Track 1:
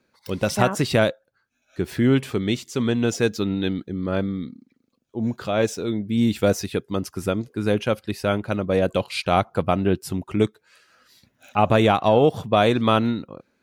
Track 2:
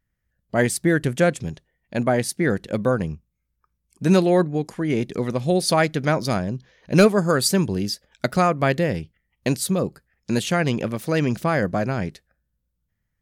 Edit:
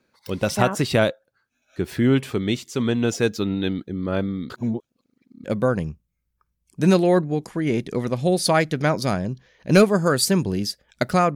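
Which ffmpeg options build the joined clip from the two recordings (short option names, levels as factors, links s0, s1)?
-filter_complex "[0:a]apad=whole_dur=11.35,atrim=end=11.35,asplit=2[s0][s1];[s0]atrim=end=4.502[s2];[s1]atrim=start=4.498:end=5.442,asetpts=PTS-STARTPTS,areverse[s3];[1:a]atrim=start=2.668:end=8.58[s4];[s2][s3]acrossfade=d=0.004:c1=hsin:c2=hsin[s5];[s5][s4]acrossfade=d=0.004:c1=hsin:c2=hsin"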